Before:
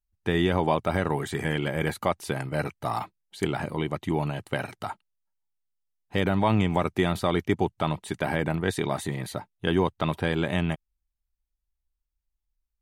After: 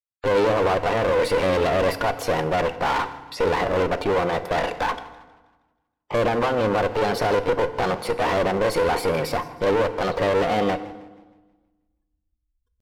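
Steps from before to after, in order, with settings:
noise gate −52 dBFS, range −37 dB
gate on every frequency bin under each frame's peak −25 dB strong
parametric band 440 Hz +15 dB 1 octave
reversed playback
upward compression, threshold −32 dBFS
reversed playback
brickwall limiter −10.5 dBFS, peak gain reduction 7 dB
mid-hump overdrive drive 23 dB, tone 1,800 Hz, clips at −10.5 dBFS
asymmetric clip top −27.5 dBFS, bottom −11.5 dBFS
pitch shifter +3 semitones
feedback delay network reverb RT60 1.2 s, low-frequency decay 1.35×, high-frequency decay 0.7×, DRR 11 dB
feedback echo with a swinging delay time 159 ms, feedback 43%, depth 195 cents, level −20.5 dB

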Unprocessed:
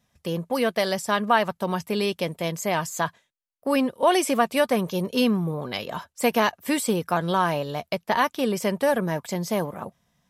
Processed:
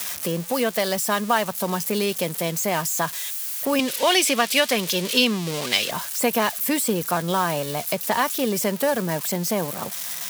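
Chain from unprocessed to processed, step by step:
spike at every zero crossing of −22 dBFS
0:03.79–0:05.91: meter weighting curve D
multiband upward and downward compressor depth 40%

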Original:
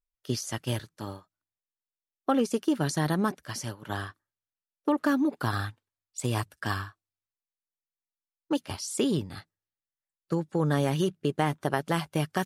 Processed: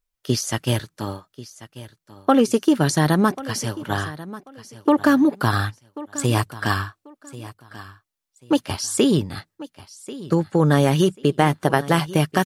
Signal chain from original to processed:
repeating echo 1,089 ms, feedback 24%, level −17 dB
level +9 dB

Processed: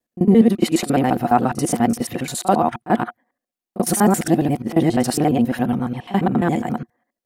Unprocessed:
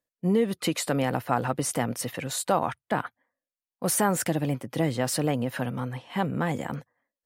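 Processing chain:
reversed piece by piece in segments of 69 ms
hollow resonant body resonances 230/340/720 Hz, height 12 dB, ringing for 55 ms
echo ahead of the sound 37 ms −16.5 dB
level +3.5 dB

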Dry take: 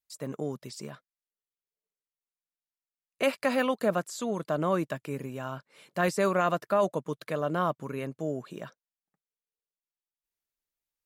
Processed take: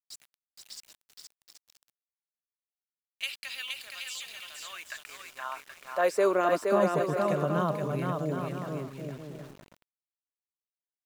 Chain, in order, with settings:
high-pass filter sweep 3,200 Hz → 130 Hz, 0:04.51–0:07.18
bouncing-ball delay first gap 470 ms, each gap 0.65×, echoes 5
centre clipping without the shift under −44.5 dBFS
level −3 dB

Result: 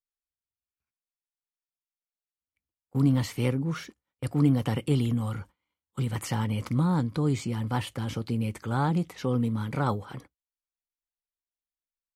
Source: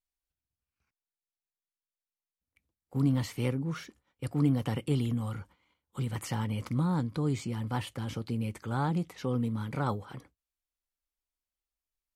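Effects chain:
noise gate −49 dBFS, range −16 dB
level +4 dB

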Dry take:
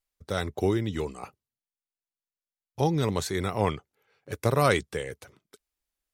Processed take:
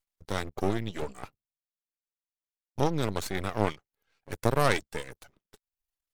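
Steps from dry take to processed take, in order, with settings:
reverb reduction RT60 0.59 s
0:01.02–0:02.80: low-shelf EQ 230 Hz +11.5 dB
half-wave rectification
level +1 dB

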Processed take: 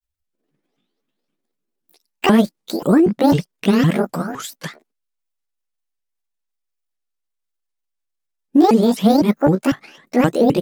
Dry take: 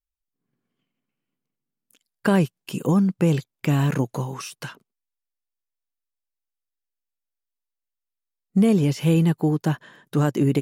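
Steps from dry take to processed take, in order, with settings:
pitch shifter swept by a sawtooth +11.5 semitones, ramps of 256 ms
granular cloud 100 ms, spray 11 ms, pitch spread up and down by 0 semitones
level +7.5 dB

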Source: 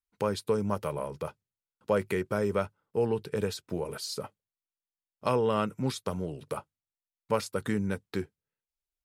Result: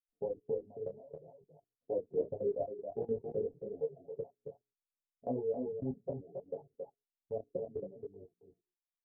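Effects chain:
tuned comb filter 230 Hz, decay 0.17 s, harmonics all, mix 70%
flanger 1.1 Hz, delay 1.6 ms, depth 6.3 ms, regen +22%
Butterworth low-pass 750 Hz 72 dB per octave
low-shelf EQ 100 Hz −5 dB
mains-hum notches 60/120/180/240/300/360/420/480 Hz
comb filter 7.3 ms, depth 75%
reverb reduction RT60 1.2 s
parametric band 470 Hz +3 dB 1.5 octaves
output level in coarse steps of 20 dB
on a send: single-tap delay 273 ms −5.5 dB
on the sum: micro pitch shift up and down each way 21 cents
level +10 dB

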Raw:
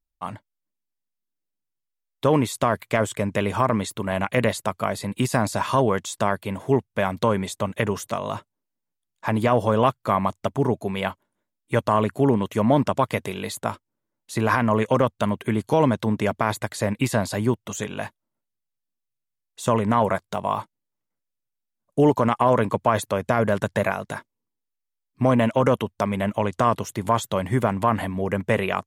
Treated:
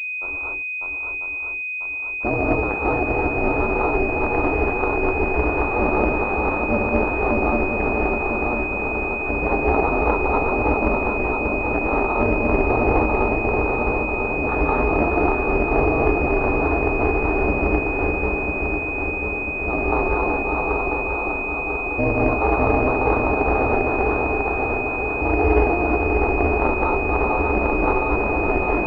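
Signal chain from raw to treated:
feedback echo with a long and a short gap by turns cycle 994 ms, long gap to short 1.5 to 1, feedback 61%, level −4 dB
reverb whose tail is shaped and stops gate 270 ms rising, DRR −3.5 dB
ring modulation 180 Hz
switching amplifier with a slow clock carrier 2,500 Hz
level −1.5 dB

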